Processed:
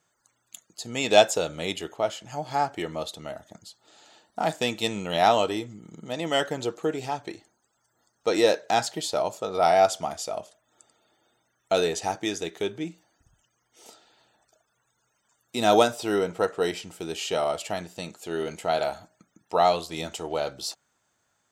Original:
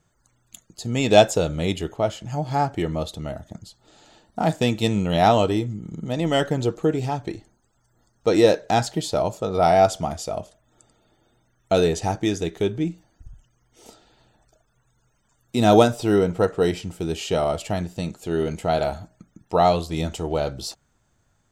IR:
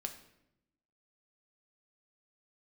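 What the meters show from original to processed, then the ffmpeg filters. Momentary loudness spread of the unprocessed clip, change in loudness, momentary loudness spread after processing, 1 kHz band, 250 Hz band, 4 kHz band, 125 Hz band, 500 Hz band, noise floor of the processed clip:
14 LU, -4.0 dB, 15 LU, -2.5 dB, -8.5 dB, 0.0 dB, -14.0 dB, -4.0 dB, -74 dBFS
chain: -af "highpass=f=670:p=1"

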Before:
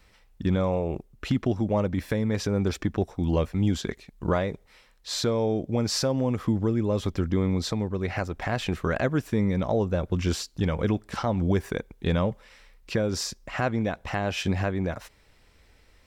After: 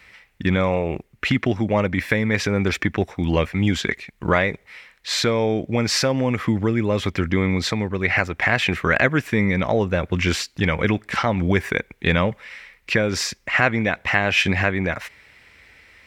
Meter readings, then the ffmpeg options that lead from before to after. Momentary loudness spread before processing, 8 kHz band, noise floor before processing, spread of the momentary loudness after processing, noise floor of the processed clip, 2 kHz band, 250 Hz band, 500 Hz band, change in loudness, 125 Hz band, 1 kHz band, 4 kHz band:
6 LU, +5.5 dB, -59 dBFS, 6 LU, -59 dBFS, +15.0 dB, +4.0 dB, +5.0 dB, +6.0 dB, +3.5 dB, +7.5 dB, +8.5 dB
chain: -af "highpass=67,equalizer=f=2.1k:t=o:w=1.1:g=14.5,volume=4dB"

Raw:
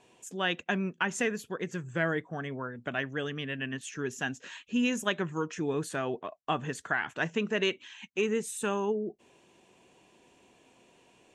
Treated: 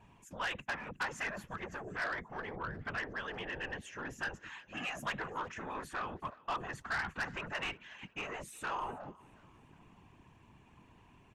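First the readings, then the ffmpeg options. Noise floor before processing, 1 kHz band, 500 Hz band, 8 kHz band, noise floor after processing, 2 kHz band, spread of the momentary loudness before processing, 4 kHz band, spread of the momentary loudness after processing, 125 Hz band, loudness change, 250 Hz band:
-64 dBFS, -2.5 dB, -13.5 dB, -11.5 dB, -63 dBFS, -4.5 dB, 7 LU, -8.0 dB, 7 LU, -10.5 dB, -7.5 dB, -15.0 dB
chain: -filter_complex "[0:a]deesser=0.65,equalizer=f=125:t=o:w=1:g=-4,equalizer=f=250:t=o:w=1:g=-11,equalizer=f=500:t=o:w=1:g=-12,equalizer=f=1k:t=o:w=1:g=9,equalizer=f=2k:t=o:w=1:g=3,equalizer=f=4k:t=o:w=1:g=-5,equalizer=f=8k:t=o:w=1:g=-9,acrossover=split=260|1200[a][b][c];[a]aeval=exprs='0.0133*sin(PI/2*7.94*val(0)/0.0133)':c=same[d];[d][b][c]amix=inputs=3:normalize=0,afftfilt=real='hypot(re,im)*cos(2*PI*random(0))':imag='hypot(re,im)*sin(2*PI*random(1))':win_size=512:overlap=0.75,asoftclip=type=tanh:threshold=-32.5dB,asplit=2[e][f];[f]asplit=3[g][h][i];[g]adelay=362,afreqshift=36,volume=-23dB[j];[h]adelay=724,afreqshift=72,volume=-30.3dB[k];[i]adelay=1086,afreqshift=108,volume=-37.7dB[l];[j][k][l]amix=inputs=3:normalize=0[m];[e][m]amix=inputs=2:normalize=0,volume=2dB"

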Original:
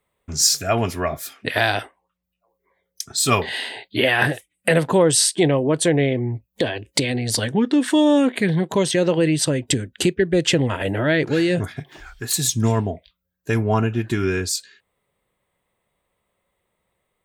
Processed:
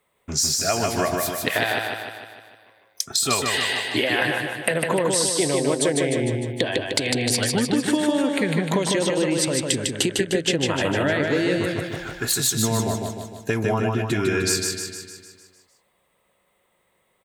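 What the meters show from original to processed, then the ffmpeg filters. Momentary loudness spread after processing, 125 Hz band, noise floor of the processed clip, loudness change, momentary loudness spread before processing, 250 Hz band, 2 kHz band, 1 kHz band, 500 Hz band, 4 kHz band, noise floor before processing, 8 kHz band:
8 LU, -4.5 dB, -68 dBFS, -2.0 dB, 10 LU, -3.0 dB, -0.5 dB, -1.5 dB, -2.5 dB, 0.0 dB, -77 dBFS, -0.5 dB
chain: -filter_complex "[0:a]lowshelf=f=130:g=-11.5,acompressor=threshold=-25dB:ratio=10,asplit=2[a][b];[b]aecho=0:1:152|304|456|608|760|912|1064|1216:0.668|0.368|0.202|0.111|0.0612|0.0336|0.0185|0.0102[c];[a][c]amix=inputs=2:normalize=0,volume=5.5dB"

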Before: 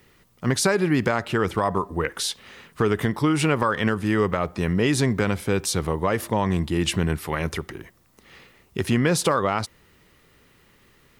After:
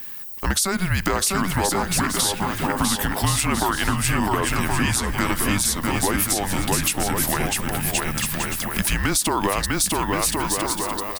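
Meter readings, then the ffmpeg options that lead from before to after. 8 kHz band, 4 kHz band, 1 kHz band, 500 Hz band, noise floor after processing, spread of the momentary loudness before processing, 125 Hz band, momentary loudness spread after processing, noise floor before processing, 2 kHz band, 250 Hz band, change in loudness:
+10.5 dB, +6.0 dB, +3.5 dB, -3.5 dB, -31 dBFS, 8 LU, 0.0 dB, 3 LU, -59 dBFS, +4.0 dB, -0.5 dB, +2.0 dB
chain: -filter_complex "[0:a]aemphasis=mode=production:type=bsi,afreqshift=-190,asplit=2[a][b];[b]aecho=0:1:650|1072|1347|1526|1642:0.631|0.398|0.251|0.158|0.1[c];[a][c]amix=inputs=2:normalize=0,alimiter=limit=-11.5dB:level=0:latency=1:release=294,acompressor=threshold=-32dB:ratio=2,volume=9dB"

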